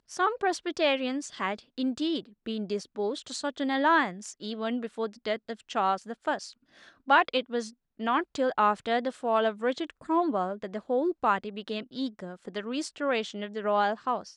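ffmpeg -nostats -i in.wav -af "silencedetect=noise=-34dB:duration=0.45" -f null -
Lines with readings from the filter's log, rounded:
silence_start: 6.46
silence_end: 7.08 | silence_duration: 0.63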